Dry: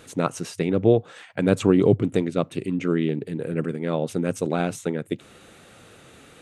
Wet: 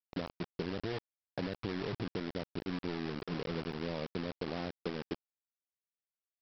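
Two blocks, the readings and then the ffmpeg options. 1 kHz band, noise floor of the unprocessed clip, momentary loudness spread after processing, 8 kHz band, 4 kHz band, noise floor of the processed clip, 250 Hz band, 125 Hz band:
-13.0 dB, -50 dBFS, 4 LU, under -25 dB, -6.0 dB, under -85 dBFS, -16.0 dB, -16.0 dB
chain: -af "lowpass=f=1.2k:w=0.5412,lowpass=f=1.2k:w=1.3066,adynamicequalizer=threshold=0.0112:dfrequency=800:dqfactor=2:tfrequency=800:tqfactor=2:attack=5:release=100:ratio=0.375:range=3:mode=cutabove:tftype=bell,alimiter=limit=-14dB:level=0:latency=1:release=38,acompressor=threshold=-30dB:ratio=10,aresample=11025,acrusher=bits=5:mix=0:aa=0.000001,aresample=44100,volume=-4dB"

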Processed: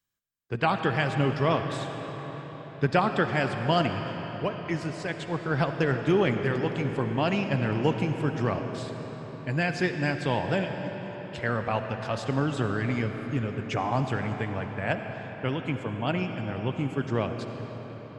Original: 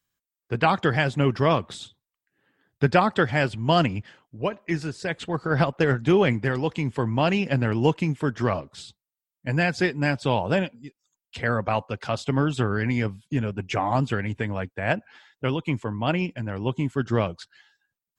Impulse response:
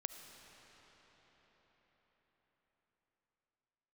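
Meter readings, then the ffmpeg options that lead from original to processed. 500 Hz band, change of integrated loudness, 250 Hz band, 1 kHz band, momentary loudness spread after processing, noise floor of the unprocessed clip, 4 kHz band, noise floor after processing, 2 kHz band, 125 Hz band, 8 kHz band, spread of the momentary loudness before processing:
-3.0 dB, -4.0 dB, -3.0 dB, -3.0 dB, 11 LU, under -85 dBFS, -3.5 dB, -41 dBFS, -3.5 dB, -3.0 dB, -3.5 dB, 9 LU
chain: -filter_complex "[1:a]atrim=start_sample=2205[a];[0:a][a]afir=irnorm=-1:irlink=0,volume=-1dB"

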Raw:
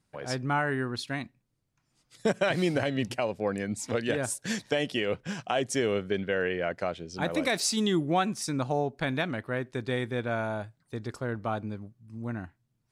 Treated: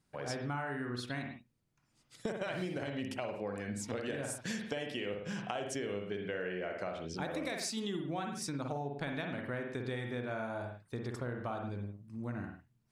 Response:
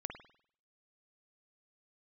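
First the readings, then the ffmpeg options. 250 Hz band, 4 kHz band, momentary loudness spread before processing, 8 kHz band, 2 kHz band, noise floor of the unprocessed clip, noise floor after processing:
-8.0 dB, -9.5 dB, 11 LU, -9.0 dB, -8.5 dB, -76 dBFS, -75 dBFS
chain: -filter_complex "[1:a]atrim=start_sample=2205,afade=t=out:st=0.24:d=0.01,atrim=end_sample=11025[a];[0:a][a]afir=irnorm=-1:irlink=0,acompressor=threshold=-36dB:ratio=6,volume=1dB"

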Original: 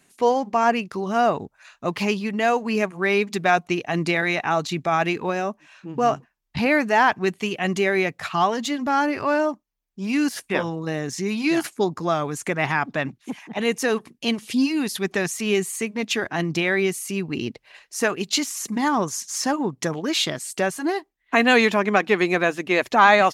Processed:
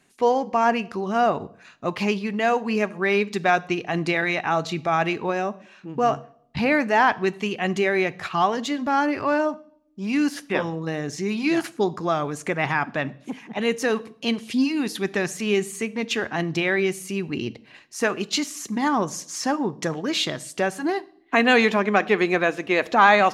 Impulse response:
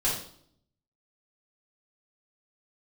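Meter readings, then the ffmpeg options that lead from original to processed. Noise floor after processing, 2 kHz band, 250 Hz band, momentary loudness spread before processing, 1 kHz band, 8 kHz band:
-54 dBFS, -1.0 dB, -0.5 dB, 9 LU, -0.5 dB, -4.5 dB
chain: -filter_complex "[0:a]highshelf=f=8.1k:g=-9,asplit=2[a][b];[1:a]atrim=start_sample=2205[c];[b][c]afir=irnorm=-1:irlink=0,volume=-24.5dB[d];[a][d]amix=inputs=2:normalize=0,volume=-1dB"

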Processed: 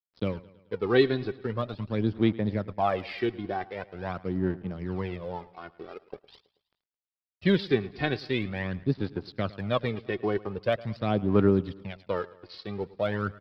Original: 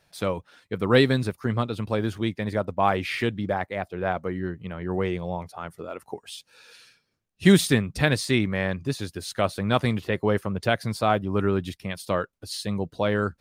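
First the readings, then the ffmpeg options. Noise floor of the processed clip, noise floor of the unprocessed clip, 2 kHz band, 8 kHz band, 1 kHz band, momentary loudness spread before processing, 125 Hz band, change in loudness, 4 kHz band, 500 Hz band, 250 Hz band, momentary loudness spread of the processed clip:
under -85 dBFS, -71 dBFS, -7.0 dB, under -30 dB, -6.0 dB, 14 LU, -4.5 dB, -4.0 dB, -7.5 dB, -2.5 dB, -3.5 dB, 16 LU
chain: -af "highpass=f=68:w=0.5412,highpass=f=68:w=1.3066,equalizer=f=280:t=o:w=2.5:g=5,aresample=11025,aeval=exprs='sgn(val(0))*max(abs(val(0))-0.00944,0)':c=same,aresample=44100,aphaser=in_gain=1:out_gain=1:delay=2.8:decay=0.61:speed=0.44:type=sinusoidal,aecho=1:1:108|216|324|432:0.1|0.053|0.0281|0.0149,volume=-8.5dB"

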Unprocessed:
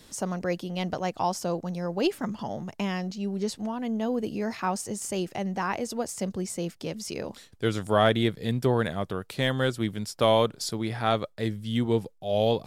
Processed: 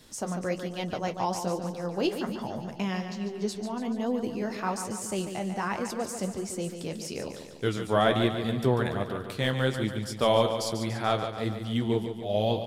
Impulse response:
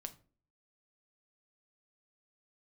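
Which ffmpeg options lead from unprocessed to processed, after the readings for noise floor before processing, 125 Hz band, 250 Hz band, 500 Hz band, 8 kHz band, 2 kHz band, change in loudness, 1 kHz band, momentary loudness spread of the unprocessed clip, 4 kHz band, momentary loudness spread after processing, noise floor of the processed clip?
-56 dBFS, -1.0 dB, -1.5 dB, -1.0 dB, -1.5 dB, -1.0 dB, -1.0 dB, -1.0 dB, 10 LU, -1.0 dB, 9 LU, -41 dBFS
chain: -af "flanger=delay=7.6:depth=8.8:regen=-48:speed=1.2:shape=sinusoidal,aecho=1:1:144|288|432|576|720|864|1008:0.376|0.214|0.122|0.0696|0.0397|0.0226|0.0129,volume=2dB"

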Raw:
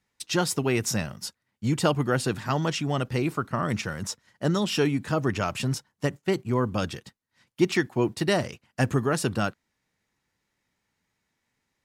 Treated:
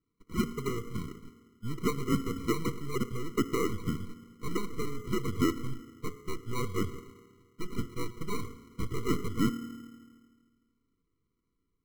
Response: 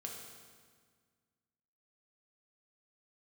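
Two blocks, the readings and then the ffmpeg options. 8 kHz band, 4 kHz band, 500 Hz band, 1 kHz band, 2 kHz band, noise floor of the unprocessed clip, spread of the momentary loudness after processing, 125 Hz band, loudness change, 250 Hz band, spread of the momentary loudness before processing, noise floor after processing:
-11.0 dB, -11.0 dB, -9.0 dB, -8.5 dB, -11.5 dB, -79 dBFS, 14 LU, -8.5 dB, -7.5 dB, -5.5 dB, 8 LU, -80 dBFS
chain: -filter_complex "[0:a]aeval=exprs='if(lt(val(0),0),0.708*val(0),val(0))':c=same,asplit=2[a][b];[1:a]atrim=start_sample=2205,lowpass=2.4k,lowshelf=f=260:g=-11.5[c];[b][c]afir=irnorm=-1:irlink=0,volume=-5.5dB[d];[a][d]amix=inputs=2:normalize=0,asubboost=boost=7.5:cutoff=56,asuperstop=centerf=680:order=8:qfactor=4.3,asoftclip=type=hard:threshold=-21dB,lowpass=f=1.4k:t=q:w=4.5,equalizer=f=290:w=1.5:g=-7,acrusher=samples=27:mix=1:aa=0.000001,afftfilt=real='re*eq(mod(floor(b*sr/1024/480),2),0)':imag='im*eq(mod(floor(b*sr/1024/480),2),0)':win_size=1024:overlap=0.75,volume=-5.5dB"

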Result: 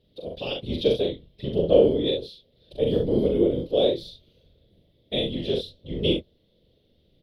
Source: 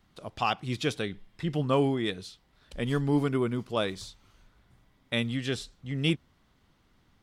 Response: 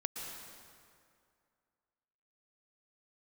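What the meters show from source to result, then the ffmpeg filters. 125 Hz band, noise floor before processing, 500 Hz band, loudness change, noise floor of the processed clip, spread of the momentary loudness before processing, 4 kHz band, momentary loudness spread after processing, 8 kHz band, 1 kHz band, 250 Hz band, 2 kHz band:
-1.0 dB, -67 dBFS, +10.0 dB, +5.5 dB, -65 dBFS, 14 LU, +5.5 dB, 15 LU, under -10 dB, -7.0 dB, +3.0 dB, -7.0 dB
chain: -filter_complex "[0:a]firequalizer=gain_entry='entry(270,0);entry(510,14);entry(750,-15);entry(1200,-23);entry(3500,7);entry(7200,-22);entry(11000,-5)':delay=0.05:min_phase=1,afftfilt=real='hypot(re,im)*cos(2*PI*random(0))':imag='hypot(re,im)*sin(2*PI*random(1))':win_size=512:overlap=0.75,asplit=2[a][b];[b]aecho=0:1:41|65:0.668|0.398[c];[a][c]amix=inputs=2:normalize=0,volume=5dB"

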